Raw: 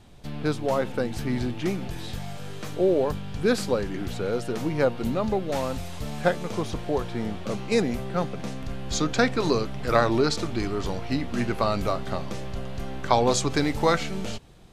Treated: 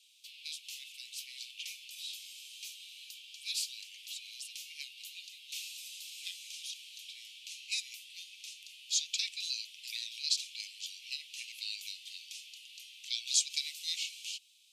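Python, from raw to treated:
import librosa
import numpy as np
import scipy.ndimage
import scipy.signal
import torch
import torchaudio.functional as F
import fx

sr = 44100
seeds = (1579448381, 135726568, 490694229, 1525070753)

y = scipy.signal.sosfilt(scipy.signal.butter(12, 2500.0, 'highpass', fs=sr, output='sos'), x)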